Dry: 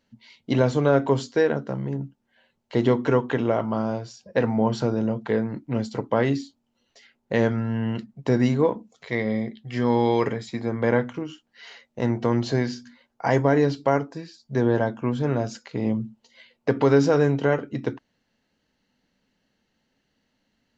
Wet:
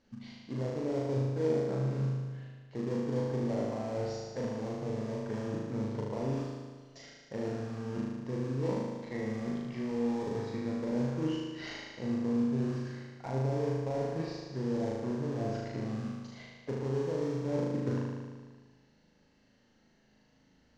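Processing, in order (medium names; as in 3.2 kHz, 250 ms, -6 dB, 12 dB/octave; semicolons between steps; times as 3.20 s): low-pass that closes with the level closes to 650 Hz, closed at -19.5 dBFS; in parallel at -9 dB: sample-rate reducer 1.4 kHz, jitter 20%; on the sum: resonant high shelf 4.5 kHz +7 dB, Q 1.5; reverse; compression 12:1, threshold -33 dBFS, peak gain reduction 22 dB; reverse; distance through air 150 m; flutter echo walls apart 6.5 m, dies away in 1.5 s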